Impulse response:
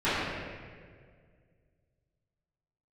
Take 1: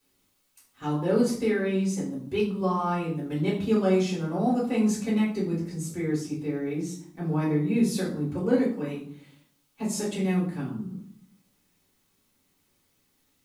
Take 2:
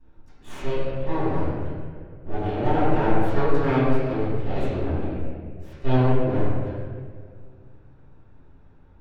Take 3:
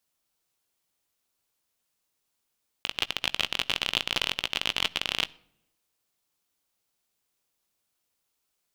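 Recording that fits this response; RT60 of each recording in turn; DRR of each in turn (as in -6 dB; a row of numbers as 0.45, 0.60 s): 2; 0.60 s, 1.9 s, not exponential; -6.5, -17.5, 15.5 dB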